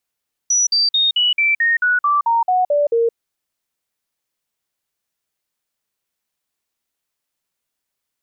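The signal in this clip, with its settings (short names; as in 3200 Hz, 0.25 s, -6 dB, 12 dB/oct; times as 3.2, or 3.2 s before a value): stepped sine 5880 Hz down, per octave 3, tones 12, 0.17 s, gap 0.05 s -12.5 dBFS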